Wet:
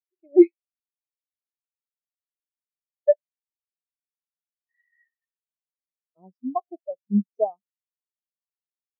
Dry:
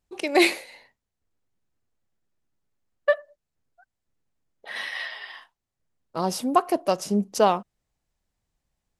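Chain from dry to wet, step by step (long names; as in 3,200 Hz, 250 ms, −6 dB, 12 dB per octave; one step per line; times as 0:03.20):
in parallel at +1.5 dB: downward compressor, threshold −27 dBFS, peak gain reduction 13.5 dB
on the sum: every bin expanded away from the loudest bin 4 to 1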